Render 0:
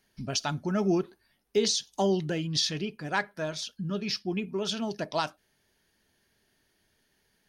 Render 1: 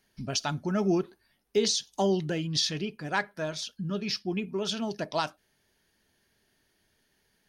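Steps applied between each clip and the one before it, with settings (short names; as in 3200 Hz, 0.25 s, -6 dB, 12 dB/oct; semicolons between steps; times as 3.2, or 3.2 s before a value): nothing audible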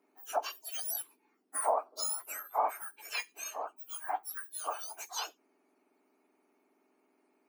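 spectrum mirrored in octaves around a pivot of 2000 Hz; gain -3.5 dB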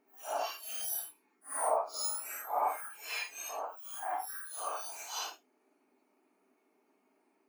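phase scrambler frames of 0.2 s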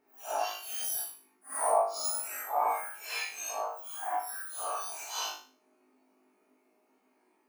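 flutter echo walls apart 3.3 m, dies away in 0.41 s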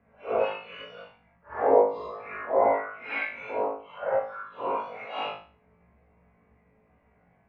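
mistuned SSB -190 Hz 220–2800 Hz; gain +7 dB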